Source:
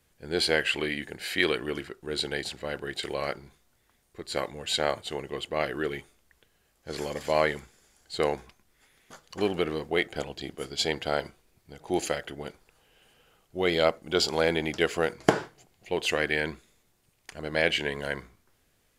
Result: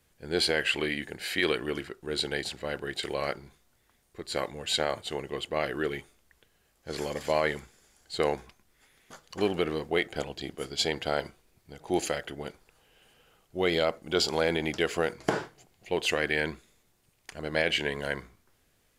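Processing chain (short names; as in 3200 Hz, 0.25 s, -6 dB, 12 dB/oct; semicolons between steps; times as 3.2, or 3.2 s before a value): limiter -13 dBFS, peak gain reduction 7 dB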